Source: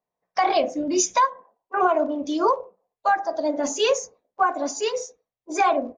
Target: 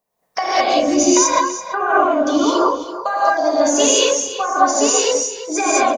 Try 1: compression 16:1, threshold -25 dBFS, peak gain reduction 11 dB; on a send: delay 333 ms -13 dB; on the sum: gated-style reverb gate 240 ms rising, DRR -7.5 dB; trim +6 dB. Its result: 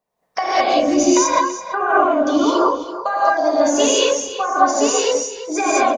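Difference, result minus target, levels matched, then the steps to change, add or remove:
8 kHz band -3.5 dB
add after compression: treble shelf 6.2 kHz +9 dB

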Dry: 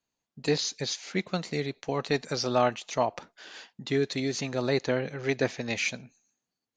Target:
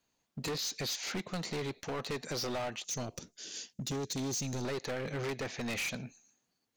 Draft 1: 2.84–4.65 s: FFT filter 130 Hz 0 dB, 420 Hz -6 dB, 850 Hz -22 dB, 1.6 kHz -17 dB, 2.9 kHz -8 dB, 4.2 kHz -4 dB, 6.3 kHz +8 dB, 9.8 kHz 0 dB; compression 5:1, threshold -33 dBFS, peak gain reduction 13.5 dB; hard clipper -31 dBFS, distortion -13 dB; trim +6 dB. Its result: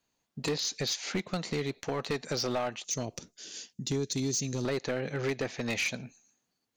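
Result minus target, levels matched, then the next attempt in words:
hard clipper: distortion -7 dB
2.84–4.65 s: FFT filter 130 Hz 0 dB, 420 Hz -6 dB, 850 Hz -22 dB, 1.6 kHz -17 dB, 2.9 kHz -8 dB, 4.2 kHz -4 dB, 6.3 kHz +8 dB, 9.8 kHz 0 dB; compression 5:1, threshold -33 dBFS, peak gain reduction 13.5 dB; hard clipper -39 dBFS, distortion -6 dB; trim +6 dB

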